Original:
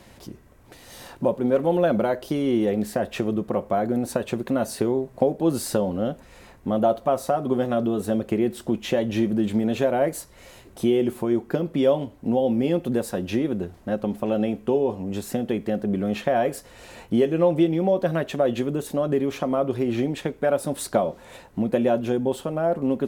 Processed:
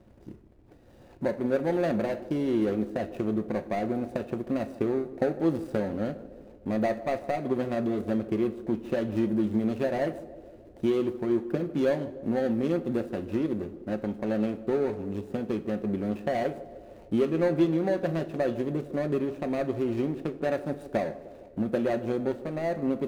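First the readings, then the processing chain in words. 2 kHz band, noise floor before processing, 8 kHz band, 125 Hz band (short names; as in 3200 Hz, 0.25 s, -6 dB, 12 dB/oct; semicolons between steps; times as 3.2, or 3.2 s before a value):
-3.5 dB, -50 dBFS, under -15 dB, -5.0 dB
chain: median filter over 41 samples; narrowing echo 0.153 s, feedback 68%, band-pass 410 Hz, level -14 dB; two-slope reverb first 0.42 s, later 2.2 s, DRR 10.5 dB; gain -4.5 dB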